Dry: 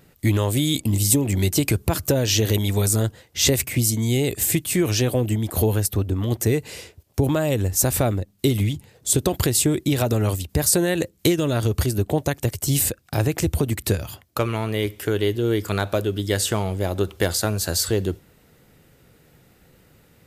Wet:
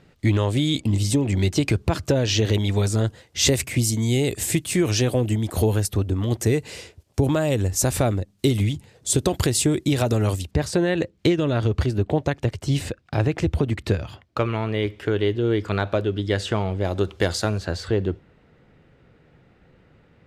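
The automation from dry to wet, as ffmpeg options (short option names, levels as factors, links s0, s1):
-af "asetnsamples=n=441:p=0,asendcmd='3.07 lowpass f 8700;10.51 lowpass f 3500;16.85 lowpass f 5800;17.58 lowpass f 2600',lowpass=4900"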